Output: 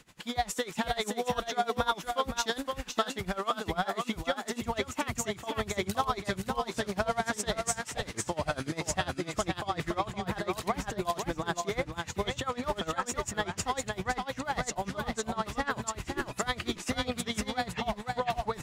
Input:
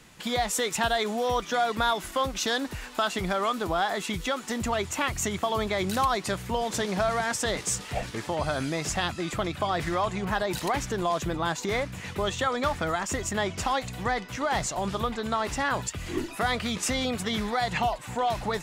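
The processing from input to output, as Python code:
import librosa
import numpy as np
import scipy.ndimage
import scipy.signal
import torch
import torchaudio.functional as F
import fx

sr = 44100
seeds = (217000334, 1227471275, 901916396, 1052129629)

y = fx.high_shelf(x, sr, hz=5300.0, db=-7.0, at=(17.66, 18.22))
y = y + 10.0 ** (-4.5 / 20.0) * np.pad(y, (int(517 * sr / 1000.0), 0))[:len(y)]
y = y * 10.0 ** (-21 * (0.5 - 0.5 * np.cos(2.0 * np.pi * 10.0 * np.arange(len(y)) / sr)) / 20.0)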